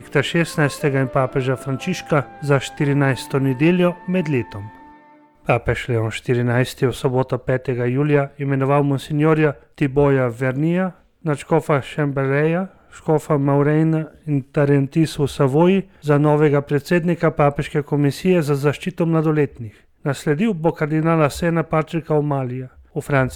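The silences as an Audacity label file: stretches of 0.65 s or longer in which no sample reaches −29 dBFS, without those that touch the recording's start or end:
4.690000	5.480000	silence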